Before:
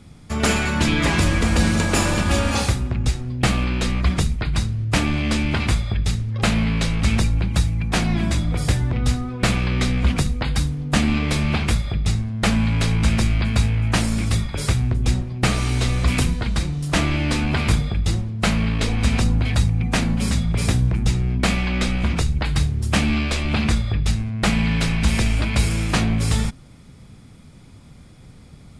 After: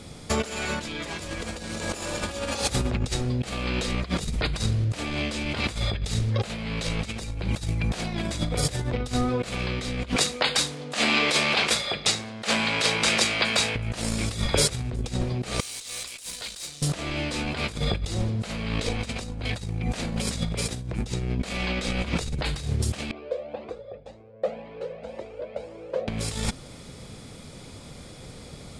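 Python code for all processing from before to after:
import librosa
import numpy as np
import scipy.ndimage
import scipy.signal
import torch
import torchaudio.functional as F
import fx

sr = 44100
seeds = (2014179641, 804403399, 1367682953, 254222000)

y = fx.chain(x, sr, fx.weighting(curve='A'),
    fx.transformer_sat(knee_hz=1200.0), at=(10.16, 13.76))
y = fx.chain(y, sr, fx.pre_emphasis(coefficient=0.97),
    fx.over_compress(threshold_db=-42.0, ratio=-1.0),
    fx.tube_stage(drive_db=37.0, bias=0.75), at=(15.6, 16.82))
y = fx.chain(y, sr, fx.bandpass_q(hz=520.0, q=5.4),
    fx.comb_cascade(direction='rising', hz=1.9), at=(23.11, 26.08))
y = fx.low_shelf(y, sr, hz=380.0, db=-5.5)
y = fx.over_compress(y, sr, threshold_db=-28.0, ratio=-0.5)
y = fx.graphic_eq(y, sr, hz=(500, 4000, 8000), db=(9, 5, 5))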